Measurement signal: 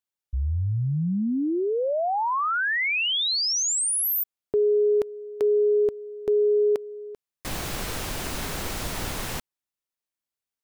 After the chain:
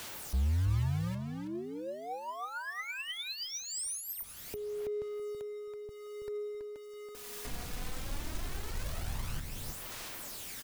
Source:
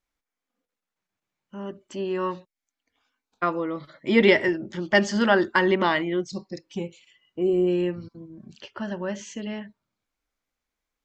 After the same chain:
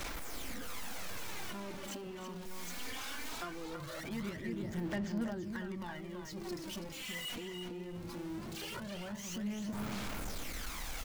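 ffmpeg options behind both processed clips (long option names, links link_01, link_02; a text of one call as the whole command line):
ffmpeg -i in.wav -filter_complex "[0:a]aeval=exprs='val(0)+0.5*0.0376*sgn(val(0))':channel_layout=same,acrossover=split=160[link_01][link_02];[link_02]acompressor=threshold=-32dB:ratio=12:attack=6.5:release=716:knee=1:detection=peak[link_03];[link_01][link_03]amix=inputs=2:normalize=0,asoftclip=type=tanh:threshold=-29dB,asplit=2[link_04][link_05];[link_05]acrusher=bits=4:mix=0:aa=0.000001,volume=-7.5dB[link_06];[link_04][link_06]amix=inputs=2:normalize=0,asplit=2[link_07][link_08];[link_08]adelay=328,lowpass=frequency=5000:poles=1,volume=-5dB,asplit=2[link_09][link_10];[link_10]adelay=328,lowpass=frequency=5000:poles=1,volume=0.2,asplit=2[link_11][link_12];[link_12]adelay=328,lowpass=frequency=5000:poles=1,volume=0.2[link_13];[link_07][link_09][link_11][link_13]amix=inputs=4:normalize=0,aphaser=in_gain=1:out_gain=1:delay=4.2:decay=0.45:speed=0.2:type=sinusoidal,volume=-7.5dB" out.wav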